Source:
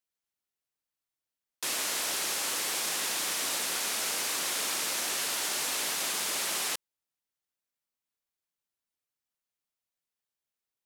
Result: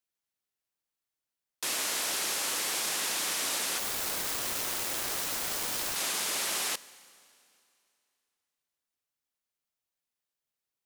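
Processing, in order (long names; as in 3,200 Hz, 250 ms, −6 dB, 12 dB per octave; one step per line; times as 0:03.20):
0:03.78–0:05.96: phase distortion by the signal itself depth 0.44 ms
four-comb reverb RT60 2.6 s, combs from 32 ms, DRR 18.5 dB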